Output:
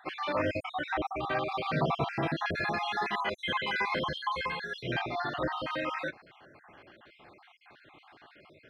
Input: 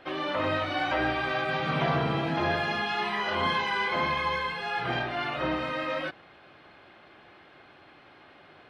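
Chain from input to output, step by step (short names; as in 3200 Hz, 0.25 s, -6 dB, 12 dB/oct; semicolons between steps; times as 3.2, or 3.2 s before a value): random spectral dropouts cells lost 53%; 0.69–1.52 high shelf 3400 Hz -8 dB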